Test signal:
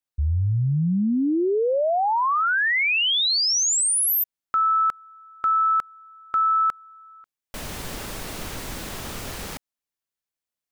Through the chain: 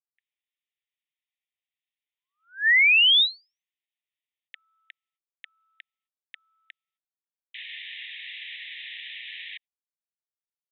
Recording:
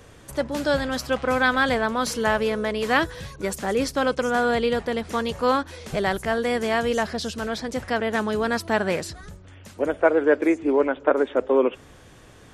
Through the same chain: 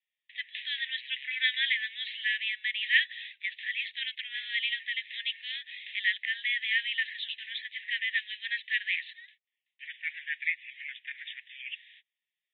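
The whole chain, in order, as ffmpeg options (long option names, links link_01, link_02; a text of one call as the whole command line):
ffmpeg -i in.wav -af "agate=range=-36dB:threshold=-37dB:ratio=16:release=251:detection=rms,asuperpass=centerf=2600:order=20:qfactor=1.3,volume=4dB" out.wav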